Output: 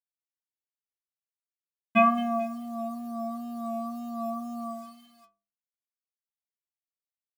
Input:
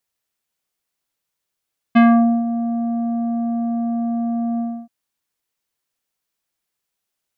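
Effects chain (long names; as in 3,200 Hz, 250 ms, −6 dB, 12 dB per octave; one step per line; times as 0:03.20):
low-pass filter sweep 2,800 Hz → 760 Hz, 0:02.14–0:05.89
repeating echo 218 ms, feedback 25%, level −11 dB
bit-depth reduction 8 bits, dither none
tape wow and flutter 31 cents
stiff-string resonator 100 Hz, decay 0.44 s, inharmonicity 0.008
level +4.5 dB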